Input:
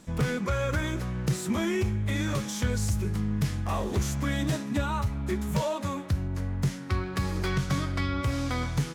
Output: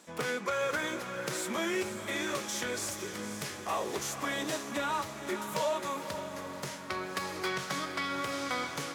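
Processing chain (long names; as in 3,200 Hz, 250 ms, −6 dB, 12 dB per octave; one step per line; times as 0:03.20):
high-pass filter 420 Hz 12 dB per octave
on a send: feedback delay with all-pass diffusion 512 ms, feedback 51%, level −8.5 dB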